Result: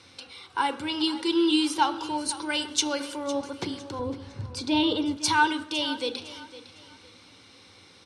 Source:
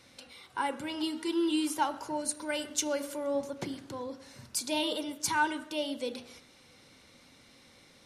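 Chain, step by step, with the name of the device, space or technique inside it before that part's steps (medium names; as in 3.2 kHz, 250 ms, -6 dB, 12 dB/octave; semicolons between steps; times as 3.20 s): car door speaker (cabinet simulation 92–8700 Hz, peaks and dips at 94 Hz +8 dB, 140 Hz -10 dB, 230 Hz -8 dB, 610 Hz -10 dB, 1.9 kHz -6 dB, 7 kHz -8 dB); 3.99–5.17 s: RIAA curve playback; dynamic bell 3.8 kHz, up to +5 dB, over -52 dBFS, Q 1.7; feedback delay 507 ms, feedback 30%, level -16 dB; trim +7.5 dB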